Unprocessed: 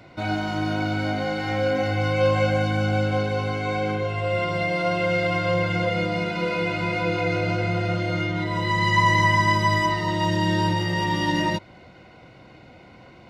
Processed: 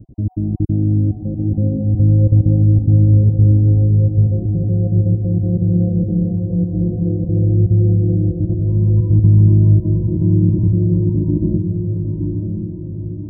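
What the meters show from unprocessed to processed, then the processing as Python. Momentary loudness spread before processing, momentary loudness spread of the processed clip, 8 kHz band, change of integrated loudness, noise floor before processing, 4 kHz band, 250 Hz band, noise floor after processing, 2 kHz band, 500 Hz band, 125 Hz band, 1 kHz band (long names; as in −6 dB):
7 LU, 9 LU, below −40 dB, +7.5 dB, −48 dBFS, below −40 dB, +9.0 dB, −27 dBFS, below −40 dB, −3.5 dB, +14.5 dB, below −25 dB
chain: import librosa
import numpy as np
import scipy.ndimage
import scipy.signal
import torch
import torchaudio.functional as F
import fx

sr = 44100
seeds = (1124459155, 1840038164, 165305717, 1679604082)

p1 = fx.spec_dropout(x, sr, seeds[0], share_pct=21)
p2 = scipy.signal.sosfilt(scipy.signal.cheby2(4, 80, [1600.0, 5000.0], 'bandstop', fs=sr, output='sos'), p1)
p3 = fx.riaa(p2, sr, side='playback')
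p4 = p3 + fx.echo_diffused(p3, sr, ms=935, feedback_pct=52, wet_db=-5.0, dry=0)
y = p4 * 10.0 ** (2.0 / 20.0)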